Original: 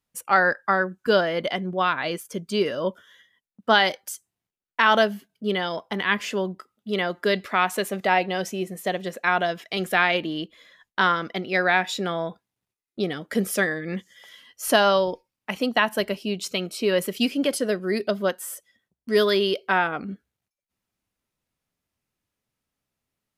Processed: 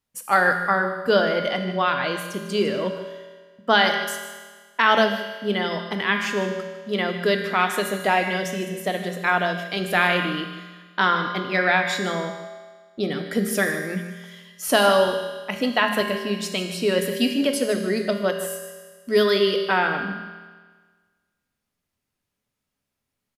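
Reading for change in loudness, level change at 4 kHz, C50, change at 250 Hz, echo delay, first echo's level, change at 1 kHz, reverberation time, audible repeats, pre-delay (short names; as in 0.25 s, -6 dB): +1.5 dB, +1.5 dB, 6.0 dB, +2.0 dB, 0.152 s, -13.5 dB, +1.0 dB, 1.5 s, 1, 5 ms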